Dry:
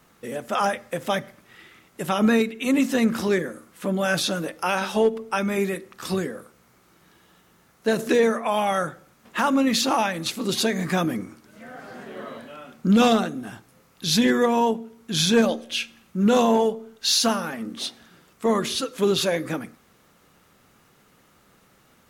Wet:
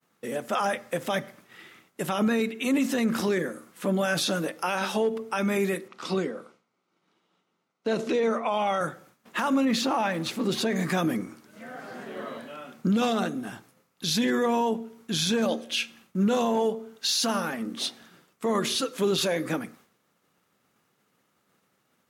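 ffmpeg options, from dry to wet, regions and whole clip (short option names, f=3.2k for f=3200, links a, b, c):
-filter_complex "[0:a]asettb=1/sr,asplit=3[a][b][c];[a]atrim=end=5.884[d];[b]atrim=start=5.88:end=8.81,asetpts=PTS-STARTPTS,afade=t=in:d=0.004:c=qsin,afade=t=out:st=2.926:d=0.004:c=qsin,highpass=170,lowpass=5.1k,bandreject=f=1.7k:w=6[e];[c]atrim=start=8.806[f];[d][e]acrossfade=d=0.004:c1=hsin:c2=qsin[g];[g][f]acrossfade=d=0.004:c1=qsin:c2=hsin,asettb=1/sr,asplit=3[h][i][j];[h]atrim=end=9.654[k];[i]atrim=start=9.65:end=10.76,asetpts=PTS-STARTPTS,afade=t=in:d=0.004:c=qsin,afade=t=out:st=1.106:d=0.004:c=qsin,aeval=exprs='val(0)+0.5*0.015*sgn(val(0))':c=same,highshelf=f=3.3k:g=-10.5[l];[j]atrim=start=10.756[m];[k][l]acrossfade=d=0.004:c1=hsin:c2=qsin[n];[n][m]acrossfade=d=0.004:c1=qsin:c2=hsin,agate=range=-33dB:threshold=-49dB:ratio=3:detection=peak,highpass=130,alimiter=limit=-17dB:level=0:latency=1:release=30"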